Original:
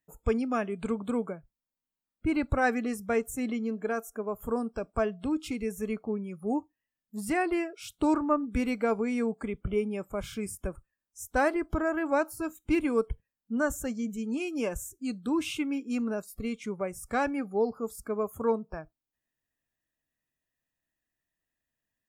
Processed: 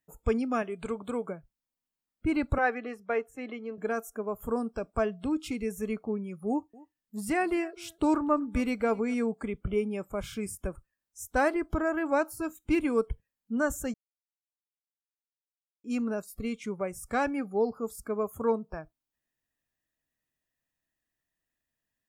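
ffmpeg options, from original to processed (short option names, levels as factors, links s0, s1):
-filter_complex "[0:a]asettb=1/sr,asplit=3[s0][s1][s2];[s0]atrim=end=0.624[s3];[s1]atrim=start=0.62:end=1.28,asetpts=PTS-STARTPTS,afade=t=in:d=0.004:c=qsin,afade=t=out:st=0.656:d=0.004:c=qsin,equalizer=f=210:t=o:w=0.77:g=-7[s4];[s2]atrim=start=1.276[s5];[s3][s4]acrossfade=d=0.004:c1=hsin:c2=qsin[s6];[s6][s5]acrossfade=d=0.004:c1=qsin:c2=hsin,asettb=1/sr,asplit=3[s7][s8][s9];[s7]atrim=end=2.584[s10];[s8]atrim=start=2.58:end=3.78,asetpts=PTS-STARTPTS,afade=t=in:d=0.004:c=qsin,afade=t=out:st=1.196:d=0.004:c=qsin,acrossover=split=320 3600:gain=0.126 1 0.0794[s11][s12][s13];[s11][s12][s13]amix=inputs=3:normalize=0[s14];[s9]atrim=start=3.776[s15];[s10][s14]acrossfade=d=0.004:c1=hsin:c2=qsin[s16];[s16][s15]acrossfade=d=0.004:c1=qsin:c2=hsin,asettb=1/sr,asplit=3[s17][s18][s19];[s17]atrim=end=6.484[s20];[s18]atrim=start=6.48:end=9.14,asetpts=PTS-STARTPTS,afade=t=in:d=0.004:c=qsin,afade=t=out:st=2.656:d=0.004:c=qsin,aecho=1:1:253:0.0708,atrim=end_sample=117306[s21];[s19]atrim=start=9.136[s22];[s20][s21]acrossfade=d=0.004:c1=hsin:c2=qsin[s23];[s23][s22]acrossfade=d=0.004:c1=qsin:c2=hsin,asplit=3[s24][s25][s26];[s24]atrim=end=13.94,asetpts=PTS-STARTPTS,afade=t=out:st=13.936:d=0.004:c=hsin[s27];[s25]atrim=start=13.94:end=15.84,asetpts=PTS-STARTPTS,volume=0[s28];[s26]atrim=start=15.84,asetpts=PTS-STARTPTS,afade=t=in:d=0.004:c=hsin[s29];[s27][s28][s29]concat=n=3:v=0:a=1"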